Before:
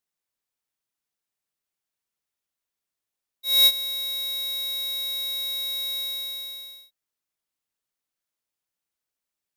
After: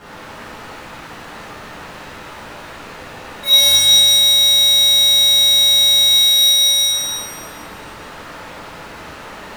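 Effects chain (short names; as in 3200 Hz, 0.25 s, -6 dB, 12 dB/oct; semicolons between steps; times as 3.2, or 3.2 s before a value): LPF 3700 Hz 12 dB/oct; low-pass opened by the level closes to 1600 Hz, open at -30 dBFS; 3.53–6.08 tilt shelf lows +5 dB; power-law curve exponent 0.35; shimmer reverb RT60 1.4 s, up +7 st, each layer -8 dB, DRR -11 dB; gain +1 dB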